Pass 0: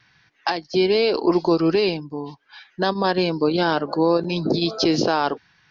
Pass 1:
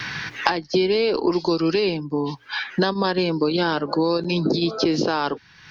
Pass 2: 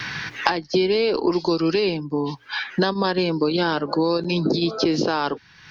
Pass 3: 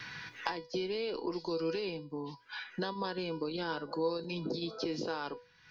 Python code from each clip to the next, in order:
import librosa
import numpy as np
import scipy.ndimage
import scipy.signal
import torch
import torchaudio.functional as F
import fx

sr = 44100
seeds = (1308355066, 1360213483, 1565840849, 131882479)

y1 = fx.peak_eq(x, sr, hz=690.0, db=-5.5, octaves=0.43)
y1 = fx.hum_notches(y1, sr, base_hz=60, count=2)
y1 = fx.band_squash(y1, sr, depth_pct=100)
y1 = y1 * 10.0 ** (-1.0 / 20.0)
y2 = y1
y3 = fx.comb_fb(y2, sr, f0_hz=490.0, decay_s=0.33, harmonics='all', damping=0.0, mix_pct=80)
y3 = y3 * 10.0 ** (-3.0 / 20.0)